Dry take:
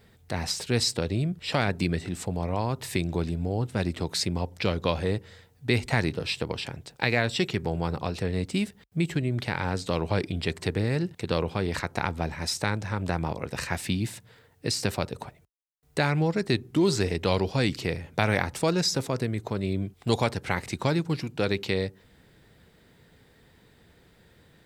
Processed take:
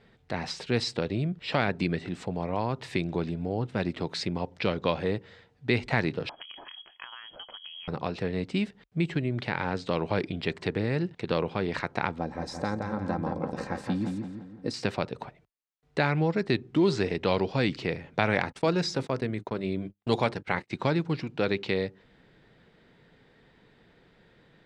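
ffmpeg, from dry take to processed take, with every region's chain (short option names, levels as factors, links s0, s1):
-filter_complex "[0:a]asettb=1/sr,asplit=3[s0][s1][s2];[s0]atrim=end=6.294[s3];[s1]atrim=start=6.29:end=7.88,asetpts=PTS-STARTPTS,afade=t=in:d=0.004:c=qsin,afade=t=out:st=1.586:d=0.004:c=qsin,equalizer=f=610:w=3.6:g=-14,acompressor=threshold=0.0141:ratio=12:attack=3.2:release=140:knee=1:detection=peak,lowpass=f=2900:t=q:w=0.5098,lowpass=f=2900:t=q:w=0.6013,lowpass=f=2900:t=q:w=0.9,lowpass=f=2900:t=q:w=2.563,afreqshift=-3400[s4];[s2]atrim=start=7.876[s5];[s3][s4]acrossfade=d=0.004:c1=hsin:c2=qsin[s6];[s6][s5]acrossfade=d=0.004:c1=qsin:c2=hsin,asettb=1/sr,asplit=3[s7][s8][s9];[s7]atrim=end=12.184[s10];[s8]atrim=start=12.18:end=14.74,asetpts=PTS-STARTPTS,afade=t=in:d=0.004:c=qsin,afade=t=out:st=2.556:d=0.004:c=qsin,equalizer=f=2600:t=o:w=1.6:g=-14,aecho=1:1:3.8:0.43,atrim=end_sample=112896,asplit=2[s11][s12];[s12]adelay=171,lowpass=f=2600:p=1,volume=0.631,asplit=2[s13][s14];[s14]adelay=171,lowpass=f=2600:p=1,volume=0.48,asplit=2[s15][s16];[s16]adelay=171,lowpass=f=2600:p=1,volume=0.48,asplit=2[s17][s18];[s18]adelay=171,lowpass=f=2600:p=1,volume=0.48,asplit=2[s19][s20];[s20]adelay=171,lowpass=f=2600:p=1,volume=0.48,asplit=2[s21][s22];[s22]adelay=171,lowpass=f=2600:p=1,volume=0.48[s23];[s11][s13][s15][s17][s19][s21][s23]amix=inputs=7:normalize=0,atrim=end_sample=112896[s24];[s9]atrim=start=14.736[s25];[s10][s24]acrossfade=d=0.004:c1=hsin:c2=qsin[s26];[s26][s25]acrossfade=d=0.004:c1=qsin:c2=hsin,asettb=1/sr,asplit=3[s27][s28][s29];[s27]atrim=end=18.414[s30];[s28]atrim=start=18.41:end=20.71,asetpts=PTS-STARTPTS,afade=t=in:d=0.004:c=qsin,afade=t=out:st=2.296:d=0.004:c=qsin,bandreject=f=50:t=h:w=6,bandreject=f=100:t=h:w=6,bandreject=f=150:t=h:w=6,bandreject=f=200:t=h:w=6,bandreject=f=250:t=h:w=6,bandreject=f=300:t=h:w=6,bandreject=f=350:t=h:w=6,agate=range=0.0178:threshold=0.0141:ratio=16:release=100:detection=peak,equalizer=f=9100:t=o:w=0.22:g=5.5[s31];[s29]atrim=start=20.706[s32];[s30][s31]acrossfade=d=0.004:c1=hsin:c2=qsin[s33];[s33][s32]acrossfade=d=0.004:c1=qsin:c2=hsin,lowpass=3700,equalizer=f=75:t=o:w=0.79:g=-13"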